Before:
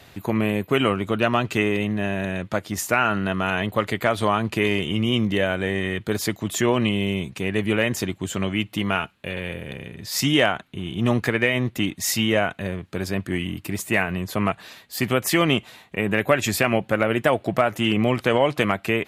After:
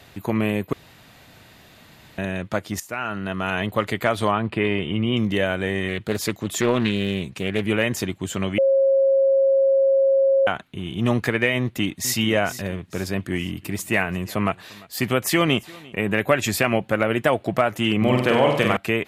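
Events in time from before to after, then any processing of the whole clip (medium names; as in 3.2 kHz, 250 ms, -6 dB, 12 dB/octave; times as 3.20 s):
0.73–2.18 s: room tone
2.80–3.64 s: fade in, from -14 dB
4.31–5.17 s: boxcar filter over 7 samples
5.88–7.67 s: loudspeaker Doppler distortion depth 0.32 ms
8.58–10.47 s: bleep 542 Hz -14 dBFS
11.59–12.16 s: echo throw 450 ms, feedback 40%, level -12.5 dB
13.27–15.97 s: delay 346 ms -23.5 dB
17.97–18.77 s: flutter echo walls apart 8.1 m, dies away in 0.71 s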